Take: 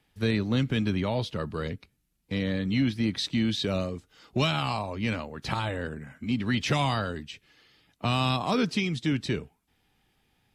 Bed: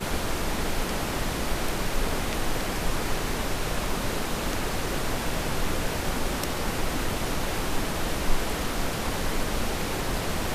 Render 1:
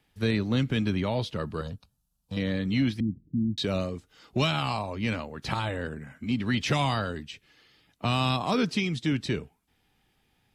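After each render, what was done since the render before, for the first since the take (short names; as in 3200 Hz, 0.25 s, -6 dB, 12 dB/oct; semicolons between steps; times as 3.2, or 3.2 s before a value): 1.61–2.37 fixed phaser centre 870 Hz, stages 4; 3–3.58 inverse Chebyshev low-pass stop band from 1600 Hz, stop band 80 dB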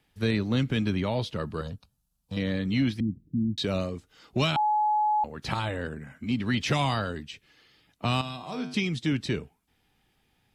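4.56–5.24 bleep 848 Hz -21 dBFS; 8.21–8.74 resonator 50 Hz, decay 0.68 s, harmonics odd, mix 80%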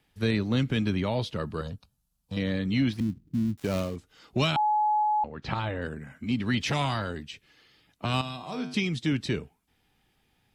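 2.93–3.96 switching dead time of 0.14 ms; 5.03–5.82 air absorption 160 m; 6.64–8.14 core saturation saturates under 490 Hz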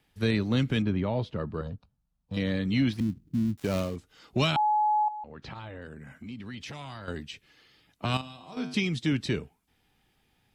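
0.82–2.34 LPF 1200 Hz 6 dB/oct; 5.08–7.08 compressor 3:1, threshold -41 dBFS; 8.17–8.57 resonator 87 Hz, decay 1.2 s, mix 70%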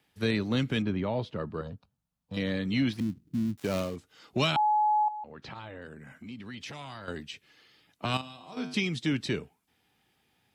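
HPF 70 Hz; low shelf 170 Hz -5.5 dB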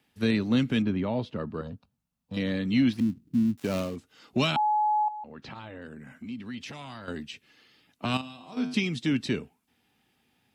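small resonant body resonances 240/2700 Hz, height 7 dB, ringing for 45 ms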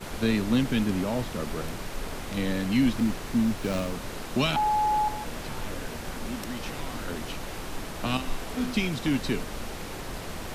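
add bed -8 dB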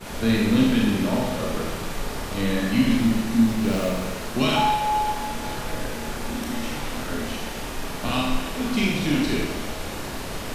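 thinning echo 0.269 s, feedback 73%, level -16.5 dB; Schroeder reverb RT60 1.1 s, combs from 27 ms, DRR -3.5 dB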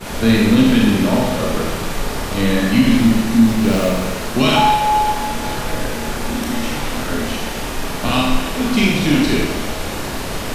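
gain +7.5 dB; limiter -3 dBFS, peak gain reduction 2.5 dB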